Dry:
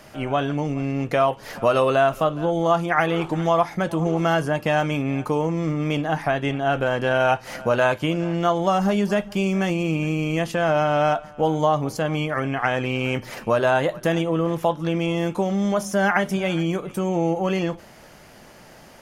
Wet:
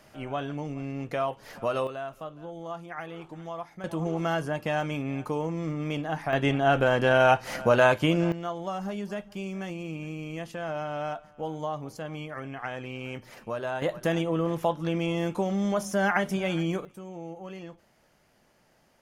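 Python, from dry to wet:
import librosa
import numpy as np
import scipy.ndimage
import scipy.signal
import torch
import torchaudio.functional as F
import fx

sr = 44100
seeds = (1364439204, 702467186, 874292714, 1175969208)

y = fx.gain(x, sr, db=fx.steps((0.0, -9.5), (1.87, -18.0), (3.84, -7.5), (6.33, -0.5), (8.32, -13.0), (13.82, -5.0), (16.85, -18.0)))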